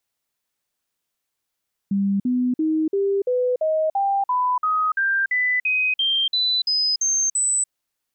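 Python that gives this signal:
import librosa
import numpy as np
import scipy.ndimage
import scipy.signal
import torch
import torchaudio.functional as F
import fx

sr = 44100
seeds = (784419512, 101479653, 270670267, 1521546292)

y = fx.stepped_sweep(sr, from_hz=198.0, direction='up', per_octave=3, tones=17, dwell_s=0.29, gap_s=0.05, level_db=-17.5)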